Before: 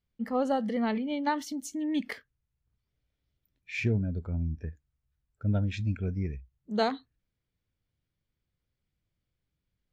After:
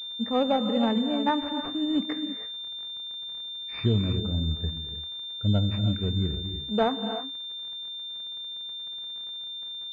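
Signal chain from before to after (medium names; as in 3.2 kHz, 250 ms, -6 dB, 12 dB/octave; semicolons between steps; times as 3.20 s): gated-style reverb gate 350 ms rising, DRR 7.5 dB; crackle 220 per s -44 dBFS; class-D stage that switches slowly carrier 3.6 kHz; trim +3.5 dB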